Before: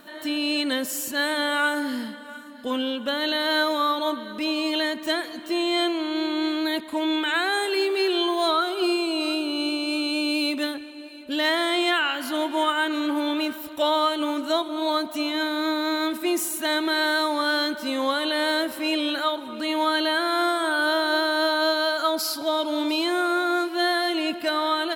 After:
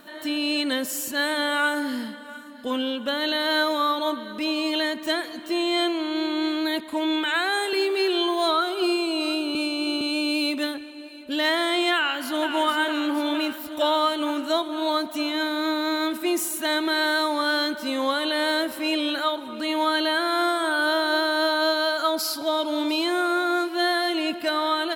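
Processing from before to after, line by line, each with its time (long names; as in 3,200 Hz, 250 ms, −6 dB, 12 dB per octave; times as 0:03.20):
0:07.24–0:07.73: high-pass filter 310 Hz
0:09.55–0:10.01: reverse
0:11.96–0:12.48: delay throw 460 ms, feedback 70%, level −7.5 dB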